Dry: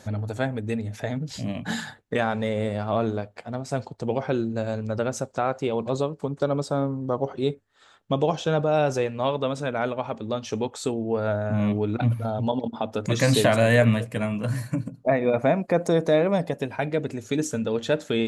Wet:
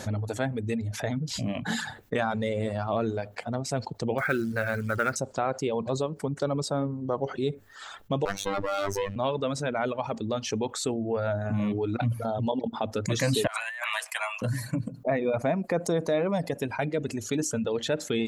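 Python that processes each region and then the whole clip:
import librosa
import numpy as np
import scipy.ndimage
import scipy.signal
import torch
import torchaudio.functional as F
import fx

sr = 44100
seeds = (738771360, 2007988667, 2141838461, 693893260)

y = fx.chain(x, sr, fx.steep_lowpass(hz=4700.0, slope=72),
    fx.band_shelf(hz=1700.0, db=15.0, octaves=1.1),
    fx.quant_companded(bits=6), at=(4.18, 5.16))
y = fx.chain(y, sr, fx.lower_of_two(delay_ms=0.51),
    fx.robotise(hz=98.8), at=(8.25, 9.16))
y = fx.chain(y, sr, fx.steep_highpass(hz=760.0, slope=48),
    fx.over_compress(threshold_db=-32.0, ratio=-0.5), at=(13.47, 14.42))
y = fx.dereverb_blind(y, sr, rt60_s=0.82)
y = fx.env_flatten(y, sr, amount_pct=50)
y = y * librosa.db_to_amplitude(-6.0)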